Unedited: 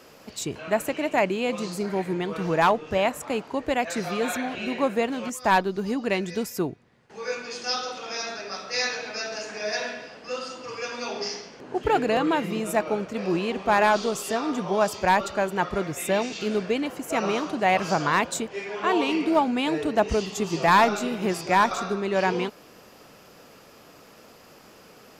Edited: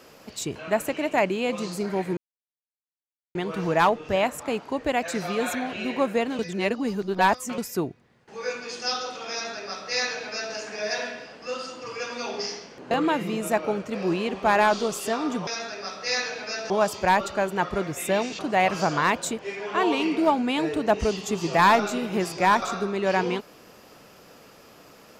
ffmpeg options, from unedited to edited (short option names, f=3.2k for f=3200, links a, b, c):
-filter_complex "[0:a]asplit=8[a][b][c][d][e][f][g][h];[a]atrim=end=2.17,asetpts=PTS-STARTPTS,afade=t=out:st=2.166:d=0.004:c=hsin,apad=pad_dur=1.18[i];[b]atrim=start=2.17:end=5.212,asetpts=PTS-STARTPTS,afade=t=in:d=0.004:c=hsin[j];[c]atrim=start=5.208:end=6.402,asetpts=PTS-STARTPTS,areverse[k];[d]atrim=start=6.398:end=11.732[l];[e]atrim=start=12.138:end=14.702[m];[f]atrim=start=8.138:end=9.372[n];[g]atrim=start=14.698:end=16.392[o];[h]atrim=start=17.478[p];[i][j]concat=n=2:v=0:a=1[q];[q][k]acrossfade=d=0.004:c1=hsin:c2=hsin[r];[r][l]acrossfade=d=0.004:c1=hsin:c2=hsin[s];[s][m]acrossfade=d=0.004:c1=hsin:c2=hsin[t];[t][n]acrossfade=d=0.004:c1=hsin:c2=hsin[u];[u][o]acrossfade=d=0.004:c1=hsin:c2=hsin[v];[v][p]acrossfade=d=0.004:c1=hsin:c2=hsin"